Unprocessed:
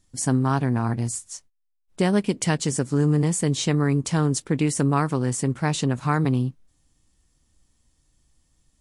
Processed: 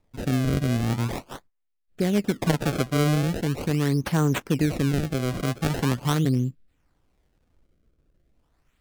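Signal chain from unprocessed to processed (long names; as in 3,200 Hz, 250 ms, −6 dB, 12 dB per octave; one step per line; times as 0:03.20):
sample-and-hold swept by an LFO 28×, swing 160% 0.42 Hz
rotating-speaker cabinet horn 0.65 Hz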